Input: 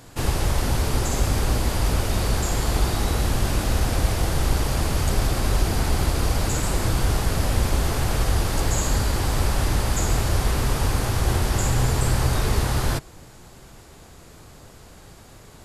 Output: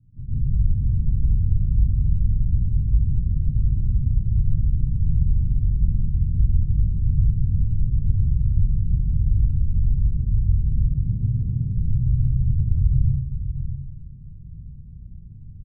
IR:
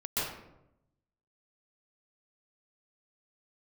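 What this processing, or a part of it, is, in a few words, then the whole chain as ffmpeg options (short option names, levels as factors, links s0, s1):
club heard from the street: -filter_complex "[0:a]asettb=1/sr,asplit=3[s0][s1][s2];[s0]atrim=end=10.734[s3];[s1]atrim=start=10.73:end=11.64,asetpts=PTS-STARTPTS,afade=t=in:d=0.004:c=qsin,afade=t=out:st=0.906:d=0.004:c=qsin,highpass=f=110:w=0.5412,highpass=f=110:w=1.3066[s4];[s2]atrim=start=11.636[s5];[s3][s4]acrossfade=d=0.004:c1=hsin:c2=qsin[s6];[s6][s5]acrossfade=d=0.004:c1=qsin:c2=hsin,alimiter=limit=0.126:level=0:latency=1:release=174,lowpass=f=160:w=0.5412,lowpass=f=160:w=1.3066[s7];[1:a]atrim=start_sample=2205[s8];[s7][s8]afir=irnorm=-1:irlink=0,asplit=2[s9][s10];[s10]adelay=641.4,volume=0.316,highshelf=f=4000:g=-14.4[s11];[s9][s11]amix=inputs=2:normalize=0"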